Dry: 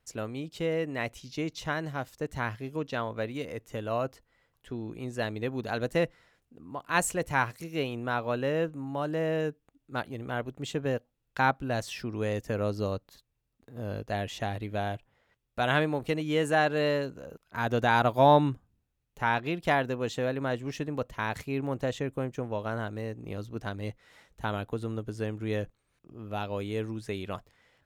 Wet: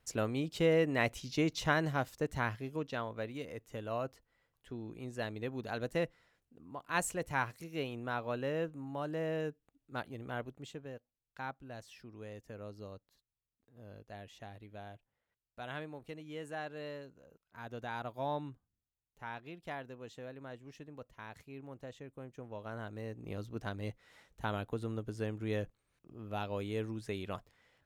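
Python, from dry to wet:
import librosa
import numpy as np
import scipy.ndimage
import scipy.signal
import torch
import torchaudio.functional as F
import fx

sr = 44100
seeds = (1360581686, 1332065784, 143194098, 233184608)

y = fx.gain(x, sr, db=fx.line((1.86, 1.5), (3.12, -7.0), (10.43, -7.0), (10.88, -17.0), (22.09, -17.0), (23.3, -4.5)))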